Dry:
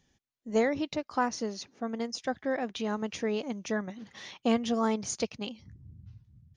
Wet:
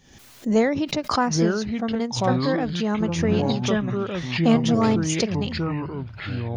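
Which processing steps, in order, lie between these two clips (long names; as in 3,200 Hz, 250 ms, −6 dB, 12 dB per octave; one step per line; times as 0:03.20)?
dynamic equaliser 180 Hz, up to +5 dB, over −42 dBFS, Q 1.1
delay with pitch and tempo change per echo 647 ms, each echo −5 semitones, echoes 3
background raised ahead of every attack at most 77 dB per second
level +5 dB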